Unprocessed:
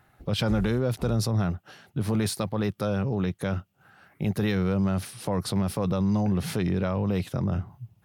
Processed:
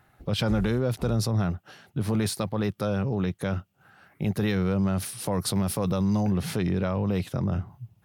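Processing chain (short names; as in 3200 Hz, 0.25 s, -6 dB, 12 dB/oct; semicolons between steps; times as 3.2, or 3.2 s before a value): 5–6.31 high shelf 6000 Hz +9 dB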